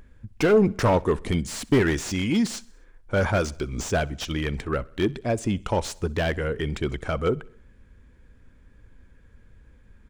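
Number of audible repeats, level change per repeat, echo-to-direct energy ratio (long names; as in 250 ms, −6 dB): 3, −5.0 dB, −22.5 dB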